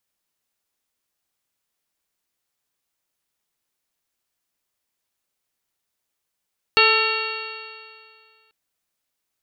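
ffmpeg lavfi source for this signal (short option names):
-f lavfi -i "aevalsrc='0.1*pow(10,-3*t/2.14)*sin(2*PI*437.63*t)+0.0631*pow(10,-3*t/2.14)*sin(2*PI*879.05*t)+0.119*pow(10,-3*t/2.14)*sin(2*PI*1328*t)+0.0631*pow(10,-3*t/2.14)*sin(2*PI*1788.09*t)+0.0708*pow(10,-3*t/2.14)*sin(2*PI*2262.82*t)+0.188*pow(10,-3*t/2.14)*sin(2*PI*2755.47*t)+0.0422*pow(10,-3*t/2.14)*sin(2*PI*3269.13*t)+0.0596*pow(10,-3*t/2.14)*sin(2*PI*3806.63*t)+0.112*pow(10,-3*t/2.14)*sin(2*PI*4370.59*t)':d=1.74:s=44100"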